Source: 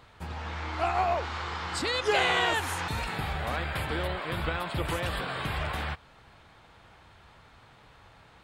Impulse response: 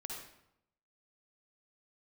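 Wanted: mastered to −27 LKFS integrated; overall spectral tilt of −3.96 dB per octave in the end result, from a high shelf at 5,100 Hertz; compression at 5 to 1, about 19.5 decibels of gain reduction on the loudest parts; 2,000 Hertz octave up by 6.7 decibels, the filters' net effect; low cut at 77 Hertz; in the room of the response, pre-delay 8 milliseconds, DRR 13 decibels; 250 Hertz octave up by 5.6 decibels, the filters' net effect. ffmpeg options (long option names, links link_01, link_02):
-filter_complex "[0:a]highpass=77,equalizer=frequency=250:width_type=o:gain=8.5,equalizer=frequency=2000:width_type=o:gain=7.5,highshelf=frequency=5100:gain=3.5,acompressor=threshold=-40dB:ratio=5,asplit=2[link_01][link_02];[1:a]atrim=start_sample=2205,adelay=8[link_03];[link_02][link_03]afir=irnorm=-1:irlink=0,volume=-11.5dB[link_04];[link_01][link_04]amix=inputs=2:normalize=0,volume=14.5dB"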